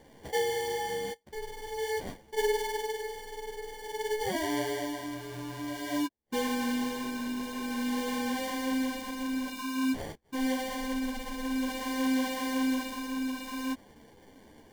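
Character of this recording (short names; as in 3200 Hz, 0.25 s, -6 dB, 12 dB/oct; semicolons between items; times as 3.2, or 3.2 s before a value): phasing stages 2, 0.51 Hz, lowest notch 690–2200 Hz; aliases and images of a low sample rate 1300 Hz, jitter 0%; a shimmering, thickened sound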